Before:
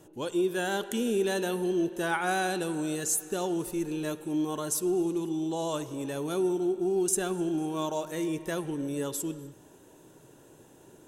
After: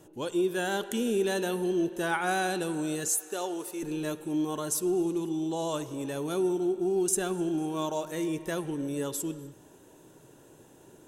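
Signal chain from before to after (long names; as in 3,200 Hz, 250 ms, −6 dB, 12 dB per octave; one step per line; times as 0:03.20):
0:03.08–0:03.83: high-pass filter 410 Hz 12 dB per octave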